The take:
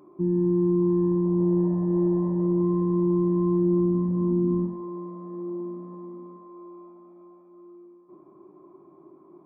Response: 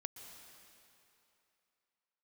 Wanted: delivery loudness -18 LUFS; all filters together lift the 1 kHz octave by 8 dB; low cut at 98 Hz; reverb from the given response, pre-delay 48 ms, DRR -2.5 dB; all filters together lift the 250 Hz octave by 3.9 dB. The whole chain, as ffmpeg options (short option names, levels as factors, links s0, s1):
-filter_complex "[0:a]highpass=98,equalizer=f=250:t=o:g=7,equalizer=f=1000:t=o:g=8,asplit=2[s0][s1];[1:a]atrim=start_sample=2205,adelay=48[s2];[s1][s2]afir=irnorm=-1:irlink=0,volume=1.88[s3];[s0][s3]amix=inputs=2:normalize=0,volume=1.06"